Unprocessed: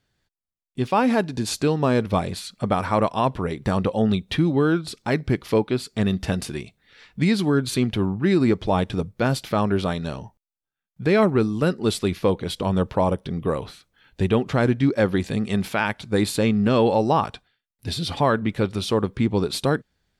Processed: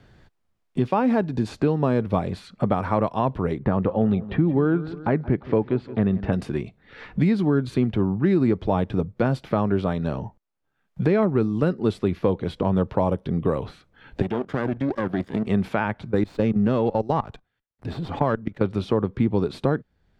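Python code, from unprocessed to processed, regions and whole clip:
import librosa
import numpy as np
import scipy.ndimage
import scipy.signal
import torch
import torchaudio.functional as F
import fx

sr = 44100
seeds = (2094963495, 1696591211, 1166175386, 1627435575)

y = fx.chain(x, sr, fx.lowpass(hz=2100.0, slope=12),
    fx.echo_feedback(ms=172, feedback_pct=42, wet_db=-18.0), at=(3.59, 6.33))
y = fx.chain(y, sr, fx.lower_of_two(delay_ms=0.59),
    fx.highpass(hz=230.0, slope=6),
    fx.level_steps(step_db=14), at=(14.22, 15.47))
y = fx.chain(y, sr, fx.level_steps(step_db=20),
    fx.running_max(window=3), at=(16.09, 18.61))
y = fx.lowpass(y, sr, hz=1100.0, slope=6)
y = fx.band_squash(y, sr, depth_pct=70)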